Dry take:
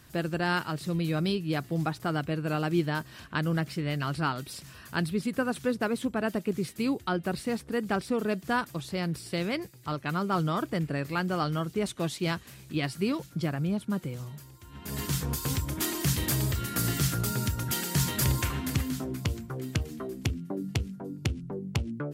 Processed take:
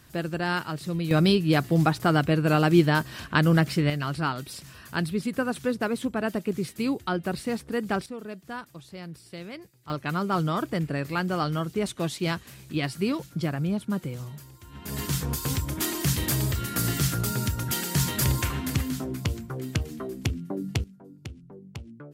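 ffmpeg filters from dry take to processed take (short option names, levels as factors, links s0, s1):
-af "asetnsamples=n=441:p=0,asendcmd='1.11 volume volume 8dB;3.9 volume volume 1.5dB;8.06 volume volume -9dB;9.9 volume volume 2dB;20.84 volume volume -10dB',volume=1.06"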